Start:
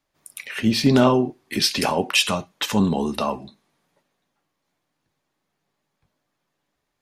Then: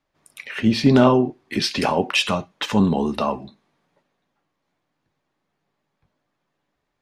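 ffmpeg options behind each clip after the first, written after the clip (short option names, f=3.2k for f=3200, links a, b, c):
-af "aemphasis=mode=reproduction:type=50fm,volume=1.5dB"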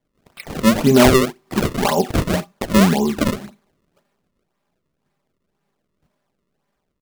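-af "aecho=1:1:5:0.59,acrusher=samples=32:mix=1:aa=0.000001:lfo=1:lforange=51.2:lforate=1.9,volume=1dB"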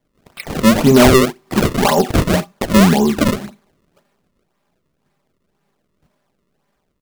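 -af "acontrast=61,volume=-1dB"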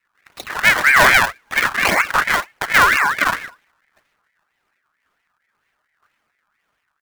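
-af "aeval=exprs='val(0)*sin(2*PI*1600*n/s+1600*0.25/4.4*sin(2*PI*4.4*n/s))':c=same"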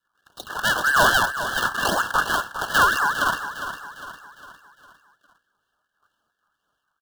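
-filter_complex "[0:a]asuperstop=centerf=2200:order=20:qfactor=2.1,asplit=2[a][b];[b]aecho=0:1:405|810|1215|1620|2025:0.299|0.137|0.0632|0.0291|0.0134[c];[a][c]amix=inputs=2:normalize=0,volume=-4dB"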